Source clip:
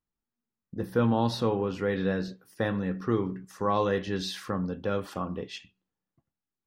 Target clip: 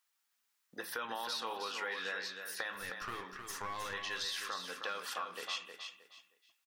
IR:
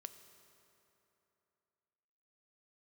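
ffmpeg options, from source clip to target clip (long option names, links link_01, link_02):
-filter_complex "[0:a]highpass=1400,alimiter=level_in=6.5dB:limit=-24dB:level=0:latency=1:release=30,volume=-6.5dB,acompressor=threshold=-56dB:ratio=3,asettb=1/sr,asplit=3[link_01][link_02][link_03];[link_01]atrim=end=2.724[link_04];[link_02]atrim=start=2.72:end=3.94,asetpts=PTS-STARTPTS,afade=type=in:duration=0.004:curve=qsin,afade=type=out:start_time=1.216:duration=0.004:curve=qsin,aeval=exprs='clip(val(0),-1,0.00126)':channel_layout=same[link_05];[link_03]atrim=start=3.936[link_06];[link_04][link_05]acrossfade=duration=0.004:curve1=hsin:curve2=qsin[link_07];[link_07][link_06]acrossfade=duration=0.004:curve1=qsin:curve2=hsin,aecho=1:1:313|626|939:0.447|0.116|0.0302,volume=14.5dB"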